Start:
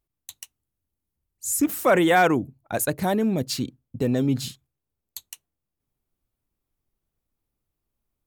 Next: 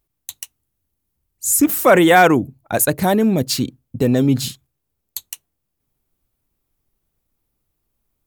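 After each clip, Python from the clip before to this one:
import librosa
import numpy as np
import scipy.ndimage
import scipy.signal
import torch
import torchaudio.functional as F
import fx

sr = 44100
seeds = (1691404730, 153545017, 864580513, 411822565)

y = fx.high_shelf(x, sr, hz=11000.0, db=5.5)
y = F.gain(torch.from_numpy(y), 7.0).numpy()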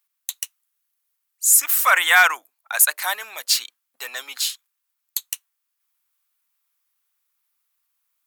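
y = scipy.signal.sosfilt(scipy.signal.butter(4, 1100.0, 'highpass', fs=sr, output='sos'), x)
y = F.gain(torch.from_numpy(y), 3.0).numpy()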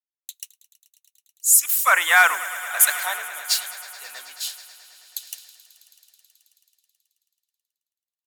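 y = fx.echo_swell(x, sr, ms=108, loudest=5, wet_db=-16)
y = fx.band_widen(y, sr, depth_pct=70)
y = F.gain(torch.from_numpy(y), -6.5).numpy()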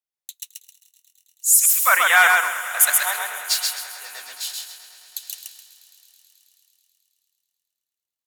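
y = fx.echo_feedback(x, sr, ms=131, feedback_pct=29, wet_db=-3.0)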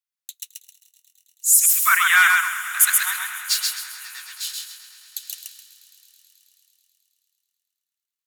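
y = scipy.signal.sosfilt(scipy.signal.butter(6, 1100.0, 'highpass', fs=sr, output='sos'), x)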